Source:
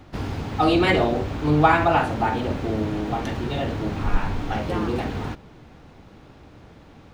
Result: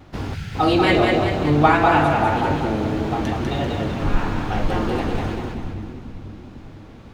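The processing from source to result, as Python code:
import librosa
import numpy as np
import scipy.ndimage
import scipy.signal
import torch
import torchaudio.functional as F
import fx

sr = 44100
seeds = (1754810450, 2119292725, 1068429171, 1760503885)

y = fx.echo_split(x, sr, split_hz=310.0, low_ms=501, high_ms=194, feedback_pct=52, wet_db=-3.5)
y = fx.vibrato(y, sr, rate_hz=1.7, depth_cents=34.0)
y = fx.spec_box(y, sr, start_s=0.34, length_s=0.21, low_hz=200.0, high_hz=1300.0, gain_db=-16)
y = y * 10.0 ** (1.0 / 20.0)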